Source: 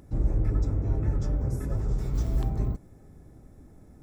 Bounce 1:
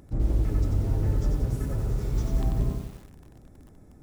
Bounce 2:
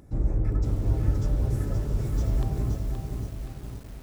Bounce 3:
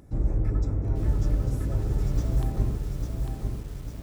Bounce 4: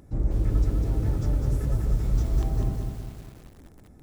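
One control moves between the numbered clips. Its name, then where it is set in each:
feedback echo at a low word length, delay time: 91, 523, 849, 200 milliseconds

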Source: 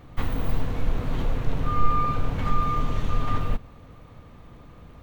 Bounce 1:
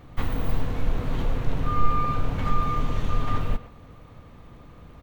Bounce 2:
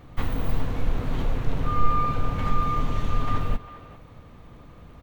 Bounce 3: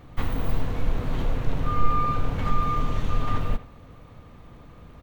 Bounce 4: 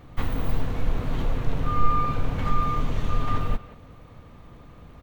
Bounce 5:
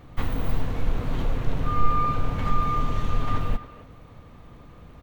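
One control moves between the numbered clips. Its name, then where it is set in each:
far-end echo of a speakerphone, delay time: 120, 400, 80, 180, 270 milliseconds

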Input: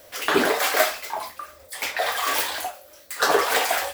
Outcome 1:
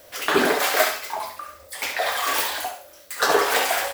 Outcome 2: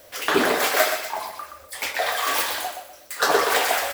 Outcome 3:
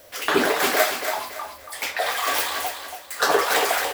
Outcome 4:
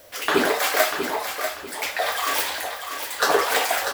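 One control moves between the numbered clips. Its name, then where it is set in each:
repeating echo, delay time: 68, 123, 281, 642 milliseconds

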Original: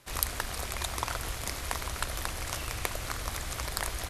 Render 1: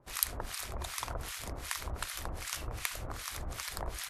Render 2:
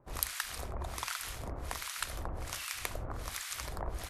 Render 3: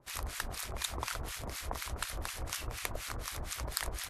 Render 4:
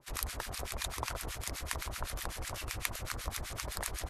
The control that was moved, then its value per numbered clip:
two-band tremolo in antiphase, speed: 2.6, 1.3, 4.1, 7.9 Hertz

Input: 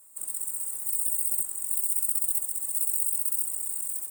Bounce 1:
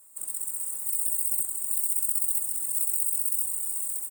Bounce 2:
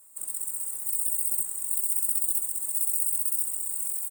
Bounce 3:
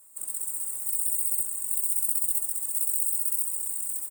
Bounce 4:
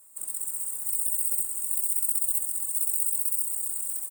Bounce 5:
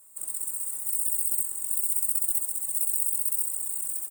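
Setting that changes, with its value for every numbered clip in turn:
repeating echo, delay time: 428, 1,047, 141, 251, 63 milliseconds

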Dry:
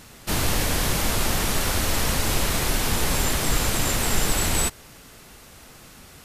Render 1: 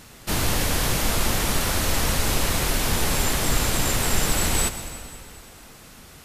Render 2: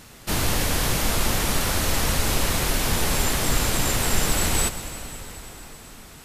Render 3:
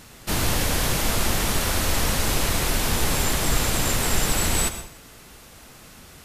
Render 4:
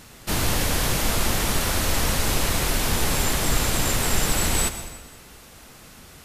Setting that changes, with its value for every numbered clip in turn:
dense smooth reverb, RT60: 2.5, 5.3, 0.51, 1.2 seconds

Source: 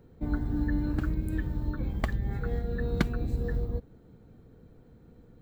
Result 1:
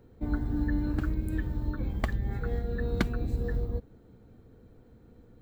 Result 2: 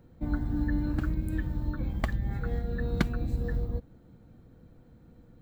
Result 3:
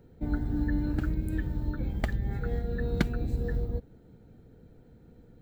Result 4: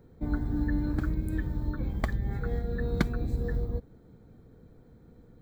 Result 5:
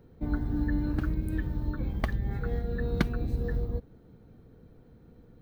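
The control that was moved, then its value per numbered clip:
notch filter, centre frequency: 160, 420, 1,100, 2,800, 7,400 Hertz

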